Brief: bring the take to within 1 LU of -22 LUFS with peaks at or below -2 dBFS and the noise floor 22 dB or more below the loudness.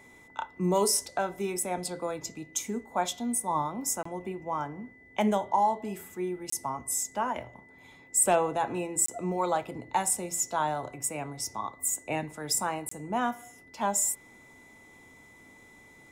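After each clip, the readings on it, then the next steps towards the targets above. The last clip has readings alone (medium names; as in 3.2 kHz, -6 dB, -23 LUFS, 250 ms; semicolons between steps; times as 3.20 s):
dropouts 4; longest dropout 24 ms; steady tone 2 kHz; tone level -54 dBFS; loudness -30.0 LUFS; peak level -14.0 dBFS; loudness target -22.0 LUFS
-> interpolate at 4.03/6.50/9.06/12.89 s, 24 ms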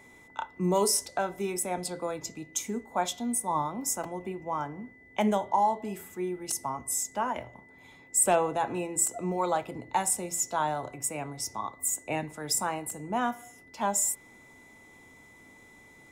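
dropouts 0; steady tone 2 kHz; tone level -54 dBFS
-> band-stop 2 kHz, Q 30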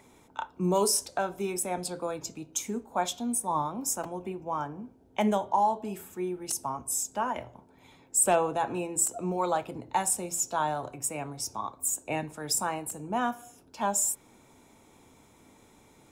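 steady tone not found; loudness -30.0 LUFS; peak level -14.0 dBFS; loudness target -22.0 LUFS
-> trim +8 dB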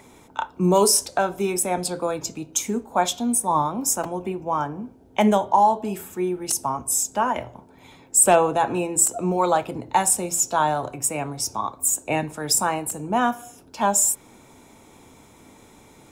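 loudness -22.0 LUFS; peak level -6.0 dBFS; noise floor -51 dBFS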